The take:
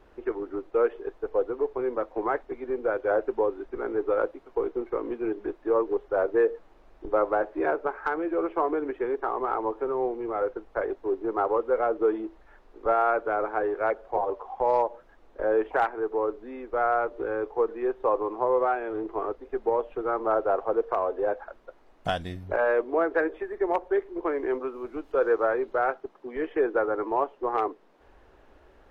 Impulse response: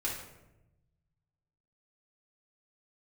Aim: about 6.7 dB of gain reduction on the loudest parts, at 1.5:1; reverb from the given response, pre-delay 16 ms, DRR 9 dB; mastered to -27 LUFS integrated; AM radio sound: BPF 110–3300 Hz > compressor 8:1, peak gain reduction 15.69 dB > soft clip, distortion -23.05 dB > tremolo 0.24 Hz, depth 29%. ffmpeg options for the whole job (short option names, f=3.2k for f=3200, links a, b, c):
-filter_complex "[0:a]acompressor=threshold=-38dB:ratio=1.5,asplit=2[a][b];[1:a]atrim=start_sample=2205,adelay=16[c];[b][c]afir=irnorm=-1:irlink=0,volume=-13dB[d];[a][d]amix=inputs=2:normalize=0,highpass=110,lowpass=3.3k,acompressor=threshold=-40dB:ratio=8,asoftclip=threshold=-32.5dB,tremolo=f=0.24:d=0.29,volume=19.5dB"